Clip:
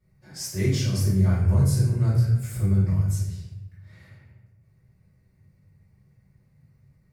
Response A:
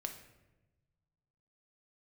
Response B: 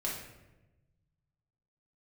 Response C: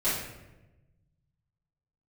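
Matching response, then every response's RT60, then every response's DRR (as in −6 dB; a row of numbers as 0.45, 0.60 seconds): C; 1.1, 1.0, 1.0 seconds; 4.0, −5.0, −14.0 decibels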